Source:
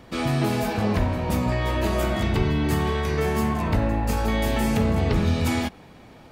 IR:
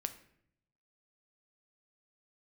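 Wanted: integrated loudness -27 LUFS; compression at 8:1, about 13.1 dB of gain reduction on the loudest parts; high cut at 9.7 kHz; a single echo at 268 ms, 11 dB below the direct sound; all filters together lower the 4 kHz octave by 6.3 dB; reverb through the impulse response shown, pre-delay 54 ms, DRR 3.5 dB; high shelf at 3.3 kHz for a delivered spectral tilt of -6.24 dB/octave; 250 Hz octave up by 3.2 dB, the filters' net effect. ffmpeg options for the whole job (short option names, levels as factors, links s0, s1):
-filter_complex "[0:a]lowpass=9700,equalizer=f=250:t=o:g=4,highshelf=f=3300:g=-5.5,equalizer=f=4000:t=o:g=-4.5,acompressor=threshold=0.0316:ratio=8,aecho=1:1:268:0.282,asplit=2[s0][s1];[1:a]atrim=start_sample=2205,adelay=54[s2];[s1][s2]afir=irnorm=-1:irlink=0,volume=0.708[s3];[s0][s3]amix=inputs=2:normalize=0,volume=1.68"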